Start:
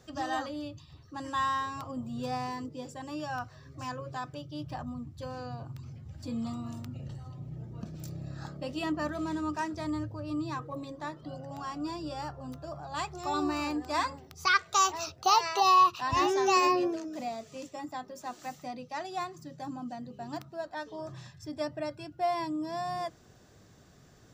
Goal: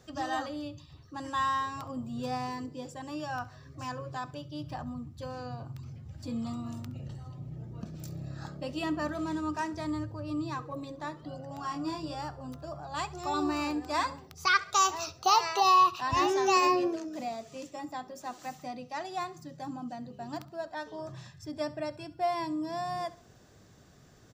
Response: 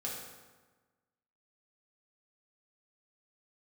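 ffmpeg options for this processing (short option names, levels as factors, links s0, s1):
-filter_complex "[0:a]asettb=1/sr,asplit=3[s0][s1][s2];[s0]atrim=end=11.614[s3];[s1]atrim=start=11.61:end=12.15,asetpts=PTS-STARTPTS,afade=t=in:d=0.004:c=qsin,afade=t=out:st=0.536:d=0.004:c=qsin,asplit=2[s4][s5];[s5]adelay=25,volume=0.668[s6];[s4][s6]amix=inputs=2:normalize=0,atrim=end_sample=23814[s7];[s2]atrim=start=12.146[s8];[s3][s7]acrossfade=d=0.004:c1=hsin:c2=qsin[s9];[s9][s8]acrossfade=d=0.004:c1=qsin:c2=hsin,aecho=1:1:68|136|204:0.112|0.0426|0.0162"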